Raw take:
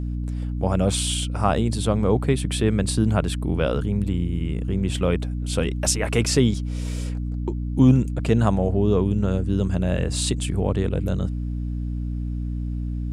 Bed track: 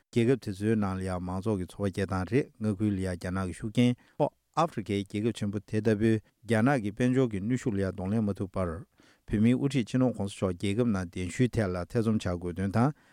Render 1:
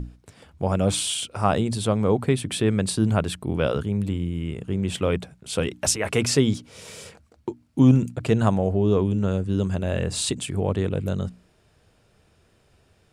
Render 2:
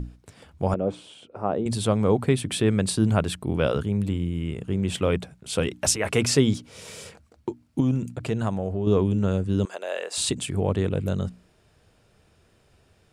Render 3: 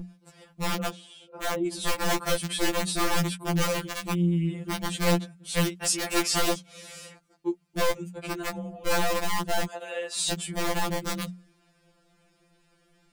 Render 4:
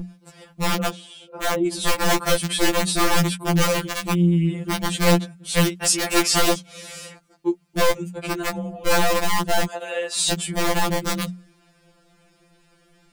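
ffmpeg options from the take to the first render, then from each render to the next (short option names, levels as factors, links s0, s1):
-af "bandreject=f=60:t=h:w=6,bandreject=f=120:t=h:w=6,bandreject=f=180:t=h:w=6,bandreject=f=240:t=h:w=6,bandreject=f=300:t=h:w=6"
-filter_complex "[0:a]asettb=1/sr,asplit=3[s0][s1][s2];[s0]atrim=end=0.744[s3];[s1]atrim=start=0.74:end=1.66,asetpts=PTS-STARTPTS,afade=t=in:d=0.004:c=qsin,afade=t=out:st=0.916:d=0.004:c=qsin,bandpass=f=410:t=q:w=1.1[s4];[s2]atrim=start=1.656[s5];[s3][s4]acrossfade=d=0.004:c1=hsin:c2=qsin[s6];[s6][s5]acrossfade=d=0.004:c1=qsin:c2=hsin,asettb=1/sr,asplit=3[s7][s8][s9];[s7]atrim=end=7.804[s10];[s8]atrim=start=7.8:end=8.87,asetpts=PTS-STARTPTS,afade=t=in:d=0.004:c=qsin,afade=t=out:st=1.066:d=0.004:c=qsin,acompressor=threshold=0.0251:ratio=1.5:attack=3.2:release=140:knee=1:detection=peak[s11];[s9]atrim=start=8.866[s12];[s10][s11]acrossfade=d=0.004:c1=hsin:c2=qsin[s13];[s13][s12]acrossfade=d=0.004:c1=qsin:c2=hsin,asettb=1/sr,asplit=3[s14][s15][s16];[s14]atrim=end=9.654[s17];[s15]atrim=start=9.65:end=10.18,asetpts=PTS-STARTPTS,afade=t=in:d=0.004:c=qsin,afade=t=out:st=0.526:d=0.004:c=qsin,highpass=f=480:w=0.5412,highpass=f=480:w=1.3066[s18];[s16]atrim=start=10.176[s19];[s17][s18]acrossfade=d=0.004:c1=hsin:c2=qsin[s20];[s20][s19]acrossfade=d=0.004:c1=qsin:c2=hsin"
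-filter_complex "[0:a]acrossover=split=6100[s0][s1];[s0]aeval=exprs='(mod(5.96*val(0)+1,2)-1)/5.96':c=same[s2];[s2][s1]amix=inputs=2:normalize=0,afftfilt=real='re*2.83*eq(mod(b,8),0)':imag='im*2.83*eq(mod(b,8),0)':win_size=2048:overlap=0.75"
-af "volume=2.11"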